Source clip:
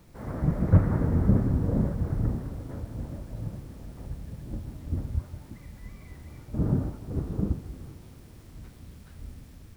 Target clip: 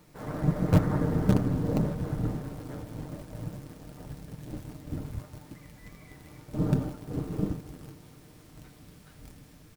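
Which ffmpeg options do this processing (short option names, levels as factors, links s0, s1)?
-filter_complex "[0:a]lowshelf=f=110:g=-11,asplit=2[s0][s1];[s1]acrusher=bits=4:dc=4:mix=0:aa=0.000001,volume=0.335[s2];[s0][s2]amix=inputs=2:normalize=0,aecho=1:1:6.6:0.43"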